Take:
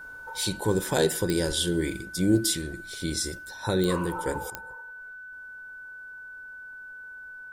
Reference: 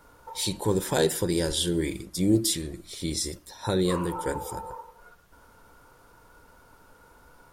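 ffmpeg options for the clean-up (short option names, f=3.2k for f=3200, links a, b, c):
-af "adeclick=t=4,bandreject=f=1.5k:w=30,asetnsamples=n=441:p=0,asendcmd='4.5 volume volume 10.5dB',volume=0dB"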